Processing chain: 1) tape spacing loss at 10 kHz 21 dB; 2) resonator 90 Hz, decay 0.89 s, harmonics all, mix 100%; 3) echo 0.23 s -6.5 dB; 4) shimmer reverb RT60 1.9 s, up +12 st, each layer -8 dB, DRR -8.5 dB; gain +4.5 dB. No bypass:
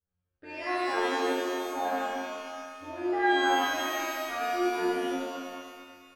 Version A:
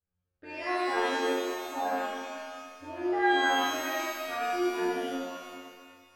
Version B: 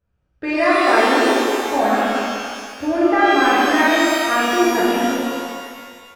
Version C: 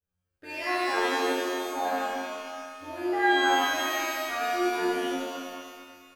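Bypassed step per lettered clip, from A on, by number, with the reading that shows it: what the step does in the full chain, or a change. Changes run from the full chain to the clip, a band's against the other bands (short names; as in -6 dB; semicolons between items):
3, momentary loudness spread change +1 LU; 2, 250 Hz band +2.0 dB; 1, 250 Hz band -2.5 dB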